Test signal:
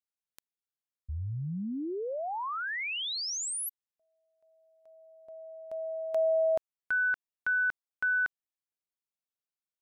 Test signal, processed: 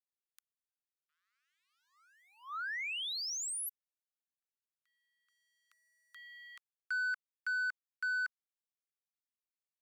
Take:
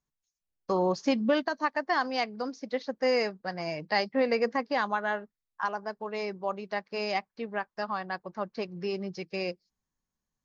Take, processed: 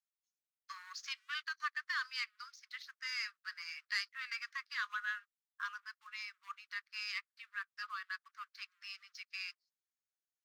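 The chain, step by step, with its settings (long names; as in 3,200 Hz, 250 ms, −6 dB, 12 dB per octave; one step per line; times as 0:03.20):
leveller curve on the samples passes 1
Butterworth high-pass 1,200 Hz 72 dB per octave
level −7.5 dB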